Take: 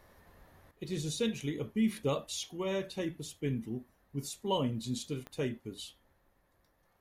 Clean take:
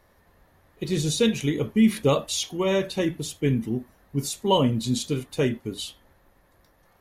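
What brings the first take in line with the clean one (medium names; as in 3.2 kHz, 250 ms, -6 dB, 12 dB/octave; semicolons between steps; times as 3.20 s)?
de-click; trim 0 dB, from 0.71 s +11 dB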